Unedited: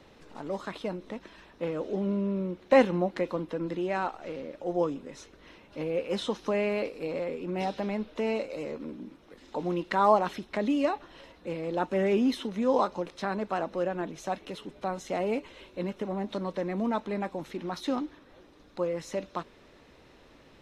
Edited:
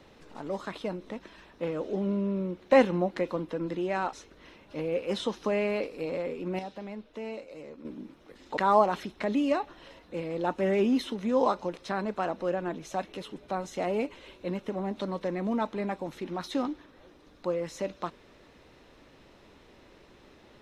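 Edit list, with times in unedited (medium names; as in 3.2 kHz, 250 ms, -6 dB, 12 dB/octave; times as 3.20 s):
4.13–5.15 s: delete
7.61–8.87 s: gain -8.5 dB
9.59–9.90 s: delete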